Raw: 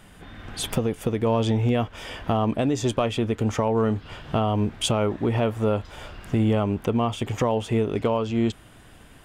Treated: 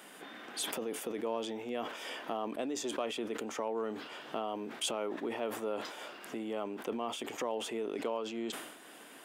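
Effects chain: compressor 2:1, threshold -42 dBFS, peak gain reduction 13 dB; HPF 270 Hz 24 dB/oct; high shelf 11000 Hz +7 dB; sustainer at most 57 dB/s

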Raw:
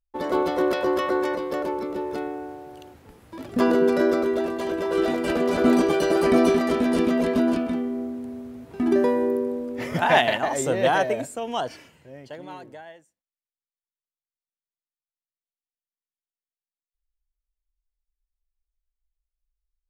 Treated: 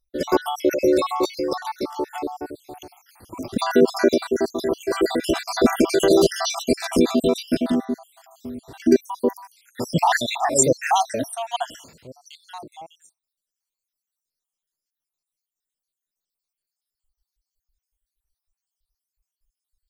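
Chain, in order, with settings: random spectral dropouts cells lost 66%; resonant high shelf 3300 Hz +7.5 dB, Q 1.5; gain +6.5 dB

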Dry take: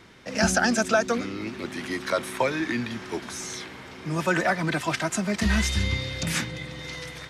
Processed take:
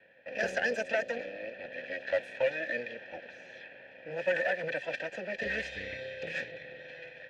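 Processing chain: minimum comb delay 1.2 ms; vowel filter e; low-pass opened by the level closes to 2500 Hz, open at -32 dBFS; gain +6 dB

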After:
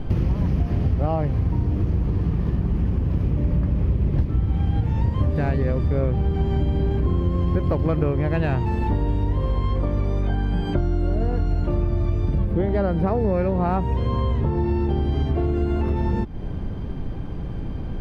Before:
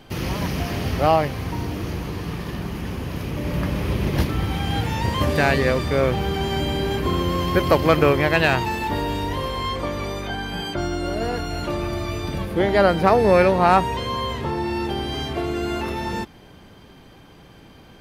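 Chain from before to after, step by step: tilt -4.5 dB/oct; compressor 6:1, threshold -24 dBFS, peak gain reduction 22 dB; gain +5 dB

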